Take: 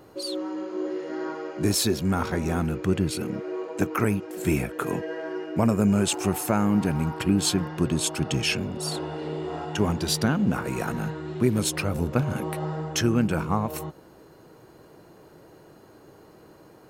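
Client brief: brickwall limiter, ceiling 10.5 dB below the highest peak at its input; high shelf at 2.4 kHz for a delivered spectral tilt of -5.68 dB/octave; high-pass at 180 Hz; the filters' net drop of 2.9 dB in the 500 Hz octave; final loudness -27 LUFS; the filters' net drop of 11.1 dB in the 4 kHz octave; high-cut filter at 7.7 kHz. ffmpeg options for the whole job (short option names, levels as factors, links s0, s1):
-af "highpass=180,lowpass=7700,equalizer=f=500:t=o:g=-3.5,highshelf=f=2400:g=-6,equalizer=f=4000:t=o:g=-8.5,volume=2,alimiter=limit=0.168:level=0:latency=1"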